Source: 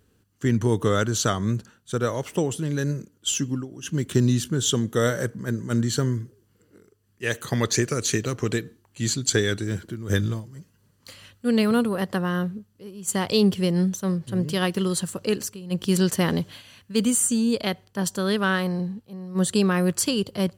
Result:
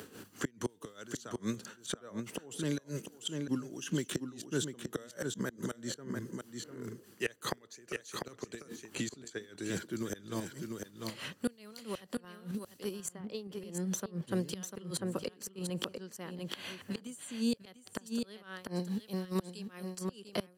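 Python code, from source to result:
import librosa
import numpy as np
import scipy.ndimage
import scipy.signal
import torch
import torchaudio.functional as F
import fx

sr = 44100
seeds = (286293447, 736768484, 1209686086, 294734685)

p1 = scipy.signal.sosfilt(scipy.signal.butter(2, 230.0, 'highpass', fs=sr, output='sos'), x)
p2 = fx.level_steps(p1, sr, step_db=20)
p3 = p1 + (p2 * 10.0 ** (2.0 / 20.0))
p4 = fx.gate_flip(p3, sr, shuts_db=-15.0, range_db=-27)
p5 = p4 * (1.0 - 0.77 / 2.0 + 0.77 / 2.0 * np.cos(2.0 * np.pi * 4.8 * (np.arange(len(p4)) / sr)))
p6 = p5 + fx.echo_single(p5, sr, ms=696, db=-9.0, dry=0)
p7 = fx.band_squash(p6, sr, depth_pct=70)
y = p7 * 10.0 ** (-1.0 / 20.0)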